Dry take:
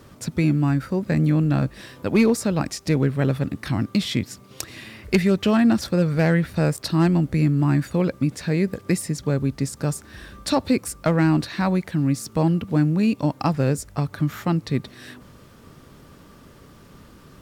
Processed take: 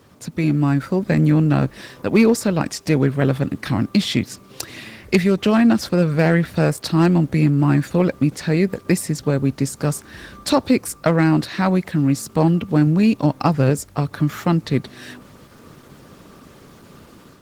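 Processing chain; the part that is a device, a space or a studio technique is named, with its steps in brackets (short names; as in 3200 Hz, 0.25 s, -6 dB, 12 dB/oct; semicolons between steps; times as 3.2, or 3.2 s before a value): 12.86–13.7 dynamic EQ 120 Hz, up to +4 dB, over -34 dBFS, Q 2.5; video call (HPF 120 Hz 6 dB/oct; AGC gain up to 7 dB; gain -1 dB; Opus 16 kbps 48000 Hz)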